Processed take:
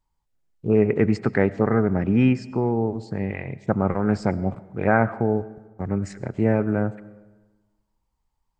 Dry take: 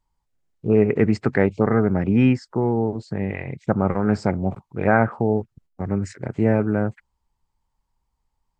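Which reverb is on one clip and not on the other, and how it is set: digital reverb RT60 1.3 s, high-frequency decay 0.6×, pre-delay 60 ms, DRR 18 dB; gain -1.5 dB

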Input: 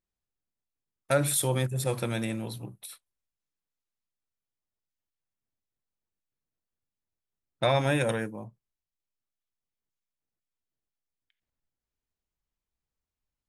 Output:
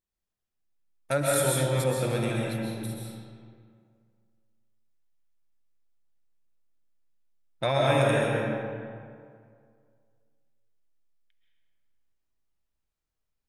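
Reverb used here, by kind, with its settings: digital reverb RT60 2.1 s, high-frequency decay 0.6×, pre-delay 95 ms, DRR -3.5 dB; gain -2.5 dB

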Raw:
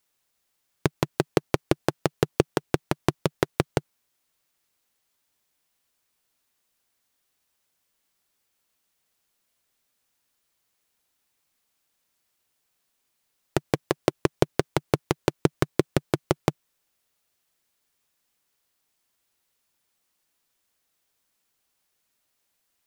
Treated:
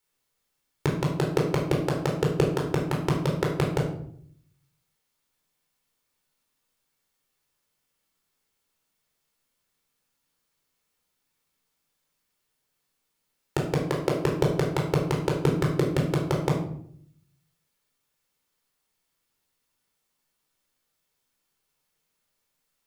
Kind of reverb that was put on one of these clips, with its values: shoebox room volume 1000 m³, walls furnished, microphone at 4.3 m; gain -6.5 dB

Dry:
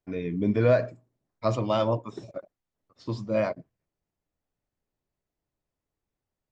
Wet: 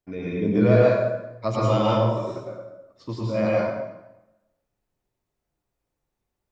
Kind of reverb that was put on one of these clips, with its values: plate-style reverb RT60 1 s, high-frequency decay 0.75×, pre-delay 90 ms, DRR -5.5 dB; gain -1 dB

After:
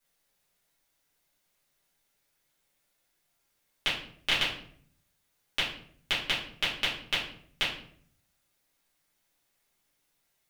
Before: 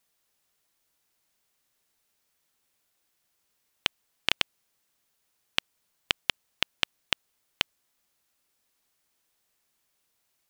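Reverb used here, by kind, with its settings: shoebox room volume 80 m³, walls mixed, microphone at 2.4 m; gain -9.5 dB

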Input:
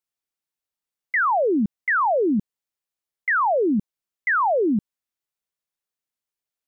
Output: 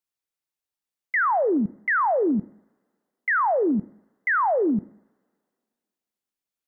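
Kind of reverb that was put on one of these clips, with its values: two-slope reverb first 0.64 s, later 2.2 s, from -28 dB, DRR 17.5 dB; gain -1.5 dB

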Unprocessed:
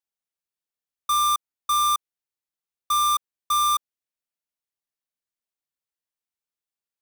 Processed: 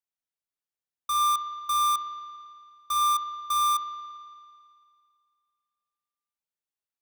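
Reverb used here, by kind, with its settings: spring tank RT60 2.2 s, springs 54 ms, chirp 45 ms, DRR 3.5 dB; gain -5.5 dB

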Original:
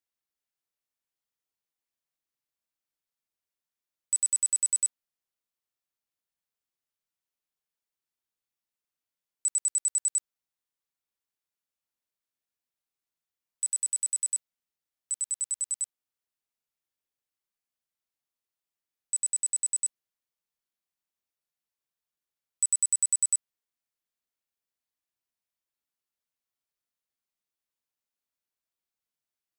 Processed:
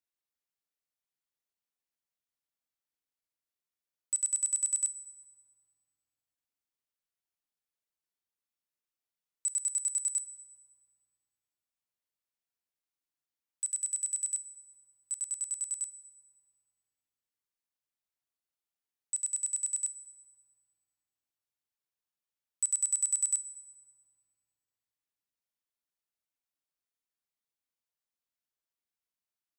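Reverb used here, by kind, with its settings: FDN reverb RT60 2.4 s, low-frequency decay 1.45×, high-frequency decay 0.55×, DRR 13.5 dB; gain -4.5 dB

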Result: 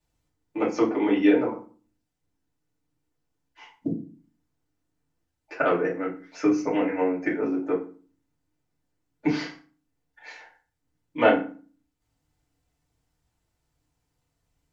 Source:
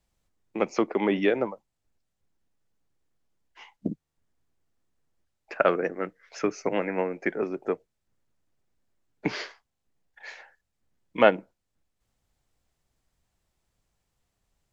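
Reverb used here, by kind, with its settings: FDN reverb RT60 0.39 s, low-frequency decay 1.45×, high-frequency decay 0.75×, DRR -6.5 dB; gain -7 dB

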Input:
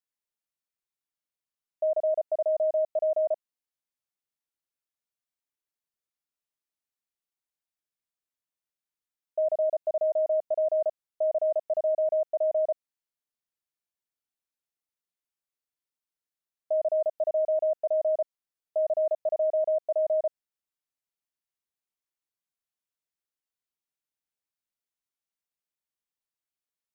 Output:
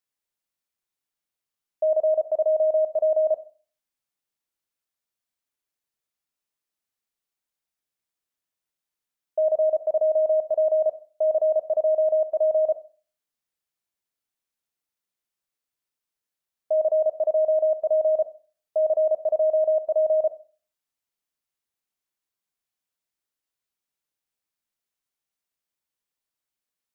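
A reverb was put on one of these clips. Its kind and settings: Schroeder reverb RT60 0.4 s, combs from 30 ms, DRR 12.5 dB; gain +4 dB

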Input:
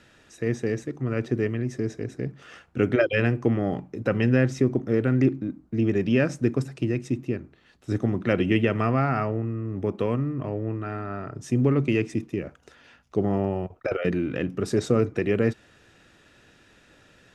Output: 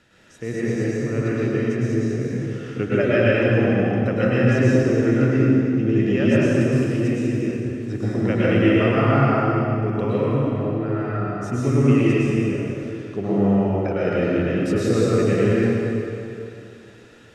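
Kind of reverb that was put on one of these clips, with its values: plate-style reverb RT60 2.8 s, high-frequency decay 0.85×, pre-delay 95 ms, DRR -8.5 dB; gain -3.5 dB

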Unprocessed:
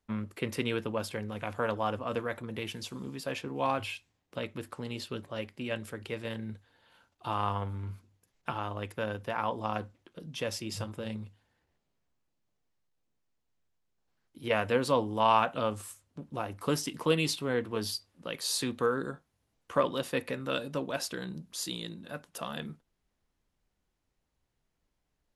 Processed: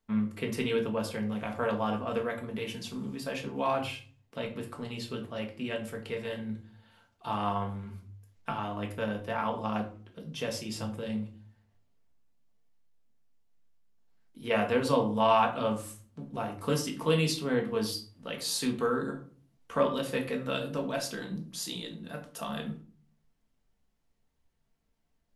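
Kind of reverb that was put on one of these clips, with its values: shoebox room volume 330 m³, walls furnished, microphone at 1.6 m; gain -2 dB

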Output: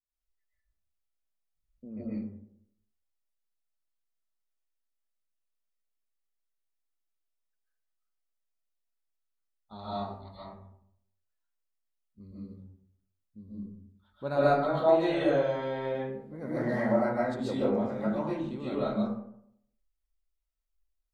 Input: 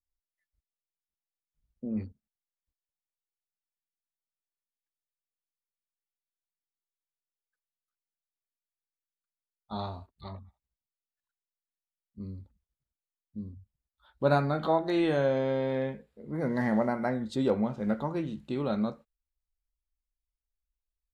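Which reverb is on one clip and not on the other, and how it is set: digital reverb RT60 0.72 s, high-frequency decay 0.45×, pre-delay 95 ms, DRR -10 dB; gain -10 dB

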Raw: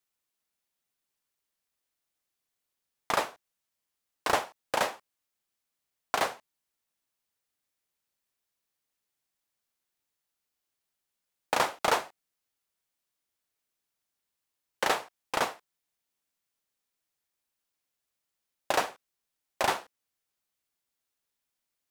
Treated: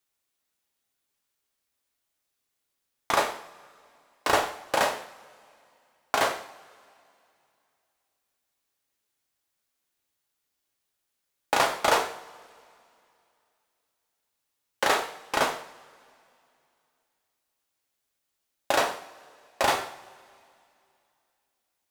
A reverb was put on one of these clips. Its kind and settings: two-slope reverb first 0.55 s, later 2.7 s, from -21 dB, DRR 3 dB; gain +2.5 dB

